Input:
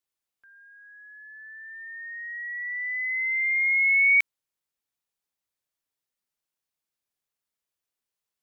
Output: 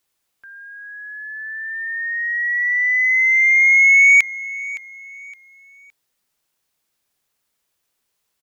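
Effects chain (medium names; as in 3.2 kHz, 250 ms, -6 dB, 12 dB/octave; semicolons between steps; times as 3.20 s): in parallel at -2 dB: compression, threshold -30 dBFS, peak gain reduction 12 dB; on the sum: saturation -14.5 dBFS, distortion -21 dB; feedback delay 565 ms, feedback 33%, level -17.5 dB; trim +9 dB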